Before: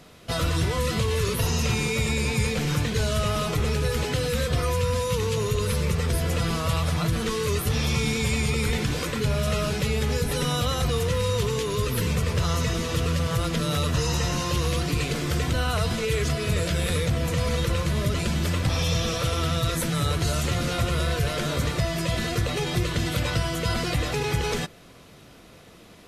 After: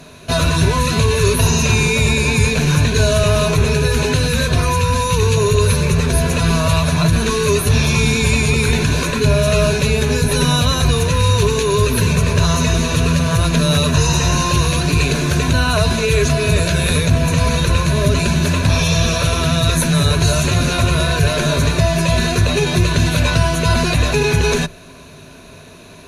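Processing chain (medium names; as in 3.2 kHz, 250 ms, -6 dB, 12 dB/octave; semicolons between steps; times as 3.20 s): rippled EQ curve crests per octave 1.5, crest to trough 10 dB; trim +8.5 dB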